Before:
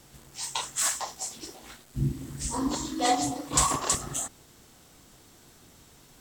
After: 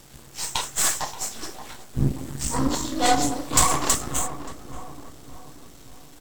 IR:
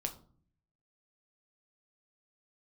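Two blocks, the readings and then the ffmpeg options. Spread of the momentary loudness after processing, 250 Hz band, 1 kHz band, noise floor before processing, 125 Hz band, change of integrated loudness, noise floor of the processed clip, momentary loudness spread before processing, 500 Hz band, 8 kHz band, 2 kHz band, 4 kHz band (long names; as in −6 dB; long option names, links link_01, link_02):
20 LU, +4.5 dB, +4.5 dB, −56 dBFS, +5.0 dB, +4.5 dB, −47 dBFS, 16 LU, +5.0 dB, +4.0 dB, +6.5 dB, +4.5 dB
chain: -filter_complex "[0:a]aeval=exprs='if(lt(val(0),0),0.251*val(0),val(0))':channel_layout=same,asplit=2[link_01][link_02];[link_02]adelay=578,lowpass=frequency=1200:poles=1,volume=-10dB,asplit=2[link_03][link_04];[link_04]adelay=578,lowpass=frequency=1200:poles=1,volume=0.53,asplit=2[link_05][link_06];[link_06]adelay=578,lowpass=frequency=1200:poles=1,volume=0.53,asplit=2[link_07][link_08];[link_08]adelay=578,lowpass=frequency=1200:poles=1,volume=0.53,asplit=2[link_09][link_10];[link_10]adelay=578,lowpass=frequency=1200:poles=1,volume=0.53,asplit=2[link_11][link_12];[link_12]adelay=578,lowpass=frequency=1200:poles=1,volume=0.53[link_13];[link_01][link_03][link_05][link_07][link_09][link_11][link_13]amix=inputs=7:normalize=0,volume=8dB"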